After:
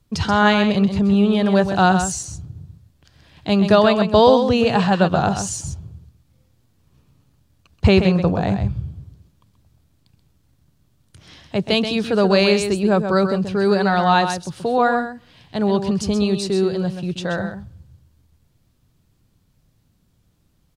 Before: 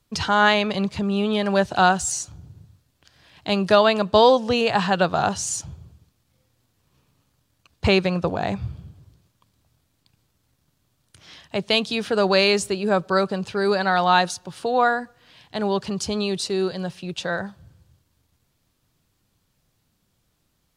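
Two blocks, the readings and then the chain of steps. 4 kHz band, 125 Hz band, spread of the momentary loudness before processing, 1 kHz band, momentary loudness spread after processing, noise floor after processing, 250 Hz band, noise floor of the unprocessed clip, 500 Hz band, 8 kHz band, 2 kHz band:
−0.5 dB, +8.0 dB, 13 LU, +1.5 dB, 13 LU, −62 dBFS, +7.5 dB, −70 dBFS, +3.0 dB, −0.5 dB, 0.0 dB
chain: low-shelf EQ 350 Hz +10.5 dB
on a send: single-tap delay 130 ms −8 dB
on the sum: level −1 dB

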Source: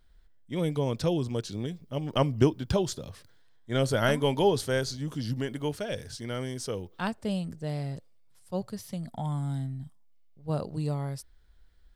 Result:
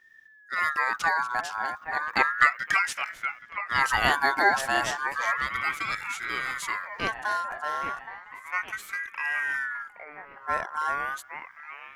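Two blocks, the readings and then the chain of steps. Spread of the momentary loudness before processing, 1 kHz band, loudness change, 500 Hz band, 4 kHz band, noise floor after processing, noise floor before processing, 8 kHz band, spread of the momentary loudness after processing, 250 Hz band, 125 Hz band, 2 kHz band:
12 LU, +11.0 dB, +3.5 dB, −8.5 dB, +1.5 dB, −53 dBFS, −57 dBFS, +2.5 dB, 15 LU, −13.0 dB, −18.5 dB, +16.0 dB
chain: delay with a band-pass on its return 818 ms, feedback 53%, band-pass 650 Hz, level −7.5 dB
ring modulator whose carrier an LFO sweeps 1,500 Hz, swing 20%, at 0.33 Hz
level +4.5 dB

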